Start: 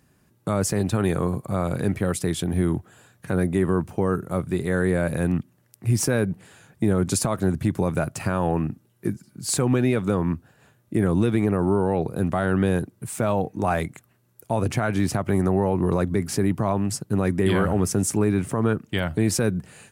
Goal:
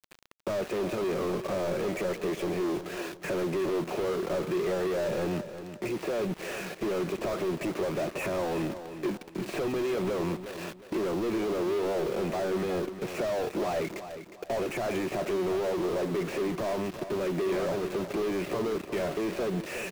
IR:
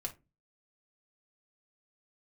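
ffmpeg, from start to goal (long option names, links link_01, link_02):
-filter_complex "[0:a]deesser=0.9,alimiter=limit=-16.5dB:level=0:latency=1:release=18,acompressor=threshold=-33dB:ratio=10,highpass=frequency=190:width=0.5412,highpass=frequency=190:width=1.3066,equalizer=frequency=250:width_type=q:width=4:gain=-10,equalizer=frequency=370:width_type=q:width=4:gain=5,equalizer=frequency=590:width_type=q:width=4:gain=4,equalizer=frequency=850:width_type=q:width=4:gain=-7,equalizer=frequency=1500:width_type=q:width=4:gain=-7,equalizer=frequency=2600:width_type=q:width=4:gain=8,lowpass=frequency=2800:width=0.5412,lowpass=frequency=2800:width=1.3066,asplit=2[link_01][link_02];[link_02]highpass=frequency=720:poles=1,volume=31dB,asoftclip=type=tanh:threshold=-25dB[link_03];[link_01][link_03]amix=inputs=2:normalize=0,lowpass=frequency=1300:poles=1,volume=-6dB,asplit=2[link_04][link_05];[1:a]atrim=start_sample=2205,lowpass=frequency=1400:width=0.5412,lowpass=frequency=1400:width=1.3066[link_06];[link_05][link_06]afir=irnorm=-1:irlink=0,volume=-16dB[link_07];[link_04][link_07]amix=inputs=2:normalize=0,aeval=exprs='val(0)*gte(abs(val(0)),0.0106)':channel_layout=same,aecho=1:1:360|720|1080:0.282|0.0902|0.0289,volume=2dB"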